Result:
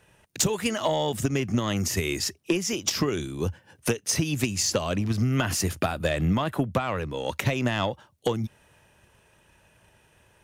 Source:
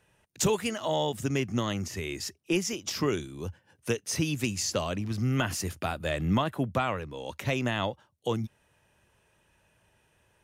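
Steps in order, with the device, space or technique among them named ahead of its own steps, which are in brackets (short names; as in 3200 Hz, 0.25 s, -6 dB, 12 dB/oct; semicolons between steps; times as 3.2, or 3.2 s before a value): drum-bus smash (transient shaper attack +8 dB, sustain +2 dB; compressor 6:1, threshold -26 dBFS, peak gain reduction 11.5 dB; soft clip -19.5 dBFS, distortion -19 dB); 1.76–2.19 high shelf 7700 Hz +9 dB; gain +6.5 dB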